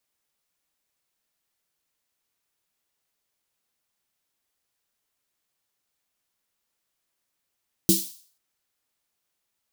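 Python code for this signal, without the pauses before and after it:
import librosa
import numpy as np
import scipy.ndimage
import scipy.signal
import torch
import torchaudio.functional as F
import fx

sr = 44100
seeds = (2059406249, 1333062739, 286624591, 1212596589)

y = fx.drum_snare(sr, seeds[0], length_s=0.49, hz=190.0, second_hz=330.0, noise_db=-1.5, noise_from_hz=3800.0, decay_s=0.23, noise_decay_s=0.49)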